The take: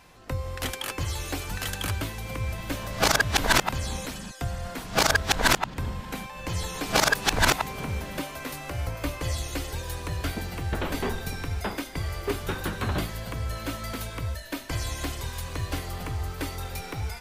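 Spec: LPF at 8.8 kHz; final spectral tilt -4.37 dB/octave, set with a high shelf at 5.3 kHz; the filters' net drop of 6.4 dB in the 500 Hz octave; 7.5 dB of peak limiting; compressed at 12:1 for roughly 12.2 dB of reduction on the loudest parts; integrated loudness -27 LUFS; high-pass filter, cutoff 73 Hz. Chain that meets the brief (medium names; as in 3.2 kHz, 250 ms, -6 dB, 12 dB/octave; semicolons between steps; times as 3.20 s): high-pass 73 Hz; low-pass 8.8 kHz; peaking EQ 500 Hz -8.5 dB; treble shelf 5.3 kHz -6 dB; compression 12:1, threshold -31 dBFS; trim +11 dB; peak limiter -16.5 dBFS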